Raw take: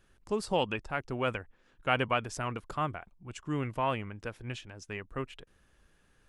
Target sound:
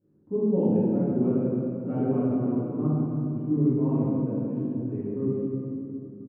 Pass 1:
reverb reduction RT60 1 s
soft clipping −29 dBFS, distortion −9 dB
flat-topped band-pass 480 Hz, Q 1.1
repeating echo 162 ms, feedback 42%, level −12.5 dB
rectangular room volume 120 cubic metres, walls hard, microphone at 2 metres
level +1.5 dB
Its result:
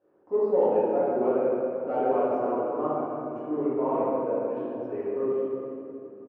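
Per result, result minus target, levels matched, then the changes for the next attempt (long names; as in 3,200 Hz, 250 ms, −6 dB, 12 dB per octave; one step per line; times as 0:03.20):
soft clipping: distortion +12 dB; 250 Hz band −7.0 dB
change: soft clipping −17.5 dBFS, distortion −21 dB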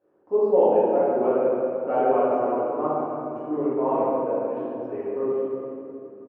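250 Hz band −8.5 dB
change: flat-topped band-pass 230 Hz, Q 1.1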